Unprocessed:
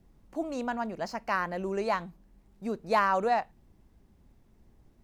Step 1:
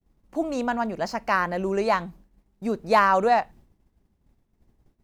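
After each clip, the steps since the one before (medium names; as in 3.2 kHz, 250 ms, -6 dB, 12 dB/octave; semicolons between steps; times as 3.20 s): expander -50 dBFS; trim +6.5 dB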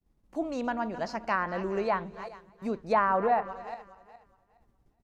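backward echo that repeats 208 ms, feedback 46%, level -14 dB; echo from a far wall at 48 m, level -21 dB; low-pass that closes with the level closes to 1.7 kHz, closed at -16 dBFS; trim -5.5 dB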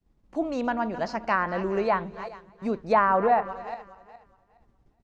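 Bessel low-pass 5.9 kHz, order 2; trim +4 dB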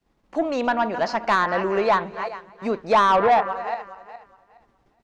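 overdrive pedal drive 16 dB, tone 4.3 kHz, clips at -8.5 dBFS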